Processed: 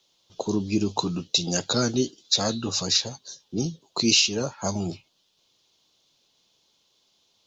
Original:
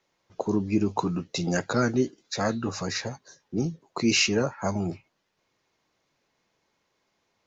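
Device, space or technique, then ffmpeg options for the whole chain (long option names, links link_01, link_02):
over-bright horn tweeter: -af "highshelf=frequency=2600:width_type=q:width=3:gain=9,alimiter=limit=-8dB:level=0:latency=1:release=307"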